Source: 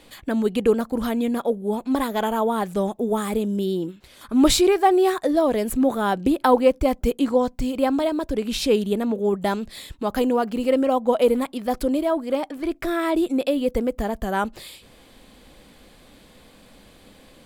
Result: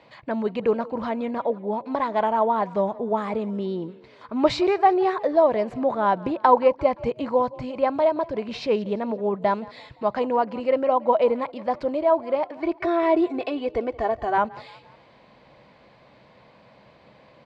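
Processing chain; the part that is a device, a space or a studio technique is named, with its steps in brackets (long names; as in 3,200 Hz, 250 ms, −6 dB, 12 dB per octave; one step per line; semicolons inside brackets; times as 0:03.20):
0:12.57–0:14.38: comb filter 2.7 ms, depth 88%
frequency-shifting delay pedal into a guitar cabinet (echo with shifted repeats 173 ms, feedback 46%, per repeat +34 Hz, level −21 dB; loudspeaker in its box 94–4,500 Hz, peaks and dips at 130 Hz +9 dB, 270 Hz −6 dB, 620 Hz +8 dB, 970 Hz +10 dB, 2,100 Hz +4 dB, 3,400 Hz −7 dB)
level −4 dB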